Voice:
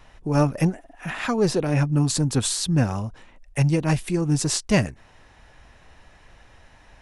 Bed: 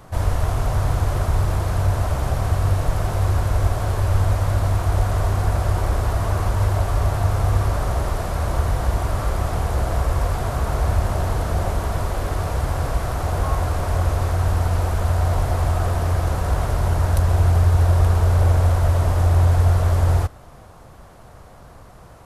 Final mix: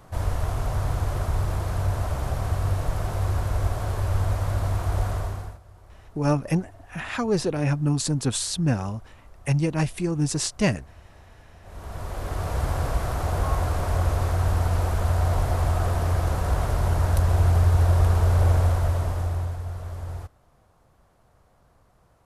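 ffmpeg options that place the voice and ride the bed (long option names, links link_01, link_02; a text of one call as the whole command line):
ffmpeg -i stem1.wav -i stem2.wav -filter_complex "[0:a]adelay=5900,volume=-2.5dB[link_01];[1:a]volume=21dB,afade=type=out:start_time=5.07:duration=0.52:silence=0.0630957,afade=type=in:start_time=11.62:duration=1.02:silence=0.0473151,afade=type=out:start_time=18.55:duration=1.04:silence=0.211349[link_02];[link_01][link_02]amix=inputs=2:normalize=0" out.wav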